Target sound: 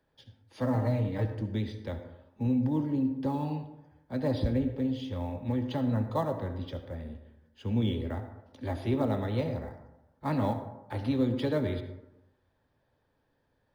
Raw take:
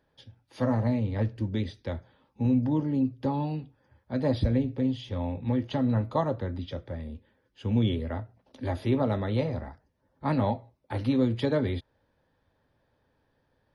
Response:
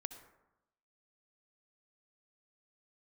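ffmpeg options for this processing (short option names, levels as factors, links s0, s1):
-filter_complex "[0:a]asettb=1/sr,asplit=3[s0][s1][s2];[s0]atrim=end=0.744[s3];[s1]atrim=start=0.74:end=1.25,asetpts=PTS-STARTPTS,afade=t=in:d=0.004:c=qsin,afade=t=out:st=0.506:d=0.004:c=qsin,aecho=1:1:6.5:0.79,atrim=end_sample=22491[s4];[s2]atrim=start=1.246[s5];[s3][s4]acrossfade=d=0.004:c1=hsin:c2=qsin[s6];[s6][s5]acrossfade=d=0.004:c1=qsin:c2=hsin,acrossover=split=170|630[s7][s8][s9];[s9]acrusher=bits=6:mode=log:mix=0:aa=0.000001[s10];[s7][s8][s10]amix=inputs=3:normalize=0[s11];[1:a]atrim=start_sample=2205[s12];[s11][s12]afir=irnorm=-1:irlink=0"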